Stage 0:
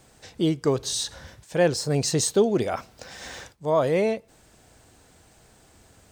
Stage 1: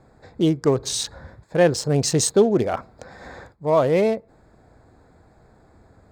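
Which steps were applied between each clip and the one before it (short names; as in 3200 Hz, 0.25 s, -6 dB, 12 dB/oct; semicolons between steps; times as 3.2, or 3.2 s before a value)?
Wiener smoothing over 15 samples; gain +4 dB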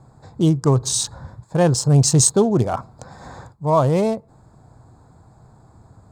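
ten-band EQ 125 Hz +11 dB, 500 Hz -4 dB, 1000 Hz +8 dB, 2000 Hz -9 dB, 8000 Hz +8 dB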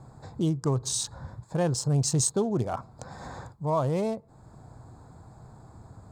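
compressor 1.5:1, threshold -41 dBFS, peak gain reduction 11 dB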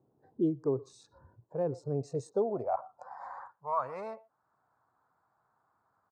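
speakerphone echo 0.12 s, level -17 dB; spectral noise reduction 14 dB; band-pass sweep 370 Hz -> 1300 Hz, 1.84–3.7; gain +3 dB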